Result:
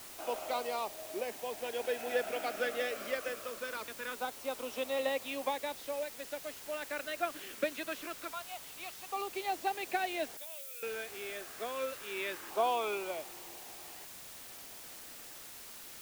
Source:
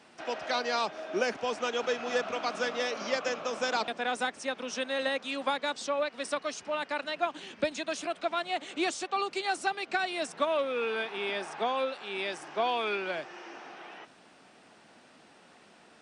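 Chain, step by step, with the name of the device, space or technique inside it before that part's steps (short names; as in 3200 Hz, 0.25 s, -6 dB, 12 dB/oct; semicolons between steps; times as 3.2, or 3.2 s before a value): 8.31–9.12 HPF 990 Hz 12 dB/oct; shortwave radio (BPF 320–2700 Hz; tremolo 0.4 Hz, depth 54%; LFO notch saw down 0.24 Hz 710–1900 Hz; white noise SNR 11 dB); 10.37–10.83 differentiator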